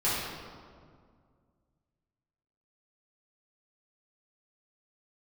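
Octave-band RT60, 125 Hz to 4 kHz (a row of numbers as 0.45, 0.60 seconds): 2.7, 2.5, 2.1, 1.9, 1.4, 1.1 seconds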